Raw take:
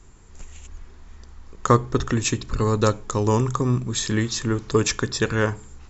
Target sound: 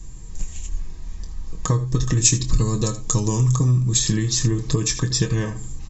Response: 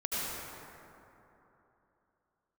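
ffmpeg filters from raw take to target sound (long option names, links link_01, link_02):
-filter_complex "[0:a]aecho=1:1:24|79:0.316|0.168,acompressor=threshold=-25dB:ratio=6,asuperstop=centerf=1400:order=20:qfactor=5.8,bass=frequency=250:gain=13,treble=frequency=4000:gain=11,aecho=1:1:6.3:0.54,asplit=3[link_01][link_02][link_03];[link_01]afade=type=out:start_time=1.85:duration=0.02[link_04];[link_02]adynamicequalizer=threshold=0.0126:dfrequency=4100:dqfactor=0.7:tfrequency=4100:tqfactor=0.7:attack=5:release=100:ratio=0.375:range=3.5:mode=boostabove:tftype=highshelf,afade=type=in:start_time=1.85:duration=0.02,afade=type=out:start_time=3.96:duration=0.02[link_05];[link_03]afade=type=in:start_time=3.96:duration=0.02[link_06];[link_04][link_05][link_06]amix=inputs=3:normalize=0,volume=-1dB"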